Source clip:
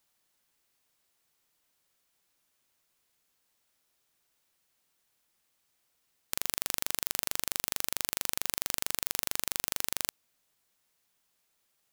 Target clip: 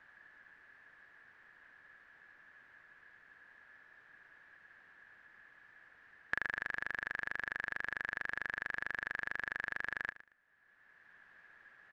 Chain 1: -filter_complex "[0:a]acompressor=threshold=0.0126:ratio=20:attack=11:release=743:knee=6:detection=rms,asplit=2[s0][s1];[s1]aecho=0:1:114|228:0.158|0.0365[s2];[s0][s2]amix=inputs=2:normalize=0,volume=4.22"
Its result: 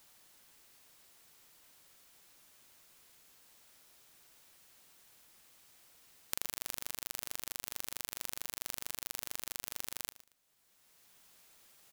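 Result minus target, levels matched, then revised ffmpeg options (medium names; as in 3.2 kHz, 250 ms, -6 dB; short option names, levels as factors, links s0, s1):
2 kHz band -14.0 dB
-filter_complex "[0:a]acompressor=threshold=0.0126:ratio=20:attack=11:release=743:knee=6:detection=rms,lowpass=f=1700:t=q:w=14,asplit=2[s0][s1];[s1]aecho=0:1:114|228:0.158|0.0365[s2];[s0][s2]amix=inputs=2:normalize=0,volume=4.22"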